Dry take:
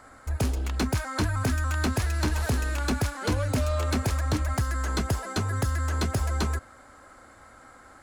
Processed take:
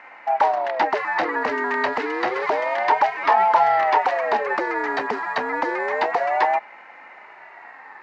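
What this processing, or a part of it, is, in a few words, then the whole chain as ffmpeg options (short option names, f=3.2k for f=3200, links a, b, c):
voice changer toy: -af "aeval=exprs='val(0)*sin(2*PI*550*n/s+550*0.4/0.29*sin(2*PI*0.29*n/s))':c=same,highpass=490,equalizer=f=530:t=q:w=4:g=-6,equalizer=f=900:t=q:w=4:g=9,equalizer=f=1.8k:t=q:w=4:g=7,equalizer=f=3.4k:t=q:w=4:g=-7,lowpass=f=3.8k:w=0.5412,lowpass=f=3.8k:w=1.3066,volume=8.5dB"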